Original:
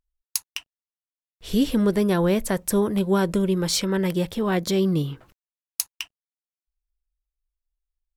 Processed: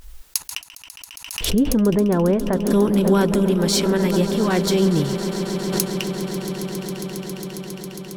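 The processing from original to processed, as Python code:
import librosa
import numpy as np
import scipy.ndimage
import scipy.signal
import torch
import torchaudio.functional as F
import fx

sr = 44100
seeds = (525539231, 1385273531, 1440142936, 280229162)

y = fx.lowpass(x, sr, hz=1200.0, slope=12, at=(1.49, 2.7), fade=0.02)
y = fx.echo_swell(y, sr, ms=136, loudest=8, wet_db=-16.5)
y = fx.pre_swell(y, sr, db_per_s=63.0)
y = y * 10.0 ** (2.5 / 20.0)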